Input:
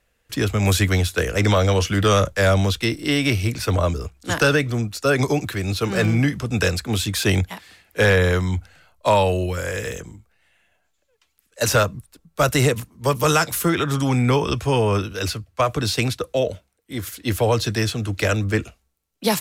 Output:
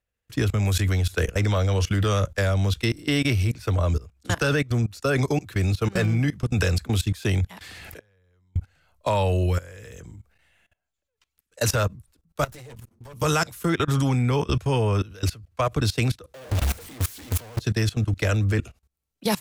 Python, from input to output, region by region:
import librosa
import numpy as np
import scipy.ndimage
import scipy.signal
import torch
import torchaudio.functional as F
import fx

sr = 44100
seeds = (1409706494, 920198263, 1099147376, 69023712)

y = fx.chain(x, sr, fx.gate_flip(shuts_db=-15.0, range_db=-31),
    fx.pre_swell(db_per_s=39.0), at=(7.53, 8.56))
y = fx.chain(y, sr, fx.lower_of_two(delay_ms=9.0),
    fx.level_steps(step_db=14), at=(12.44, 13.14))
y = fx.chain(y, sr, fx.clip_1bit(),
    fx.band_widen(depth_pct=100), at=(16.34, 17.6))
y = fx.peak_eq(y, sr, hz=81.0, db=7.0, octaves=1.7)
y = fx.level_steps(y, sr, step_db=21)